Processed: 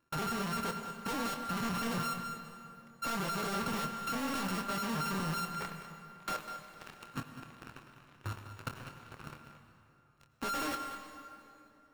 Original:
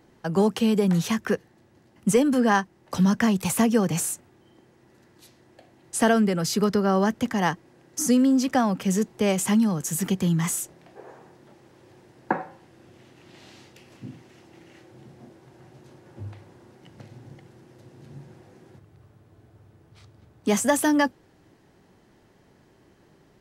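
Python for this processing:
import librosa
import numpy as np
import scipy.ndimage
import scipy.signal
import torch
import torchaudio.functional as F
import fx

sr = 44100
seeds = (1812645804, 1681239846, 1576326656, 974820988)

p1 = np.r_[np.sort(x[:len(x) // 32 * 32].reshape(-1, 32), axis=1).ravel(), x[len(x) // 32 * 32:]]
p2 = fx.peak_eq(p1, sr, hz=1400.0, db=7.0, octaves=0.69)
p3 = fx.leveller(p2, sr, passes=5)
p4 = fx.stretch_grains(p3, sr, factor=0.51, grain_ms=123.0)
p5 = 10.0 ** (-18.0 / 20.0) * np.tanh(p4 / 10.0 ** (-18.0 / 20.0))
p6 = fx.level_steps(p5, sr, step_db=14)
p7 = fx.doubler(p6, sr, ms=26.0, db=-10.0)
p8 = p7 + fx.echo_single(p7, sr, ms=199, db=-12.5, dry=0)
p9 = fx.rev_plate(p8, sr, seeds[0], rt60_s=3.0, hf_ratio=0.7, predelay_ms=75, drr_db=8.0)
y = F.gain(torch.from_numpy(p9), -7.5).numpy()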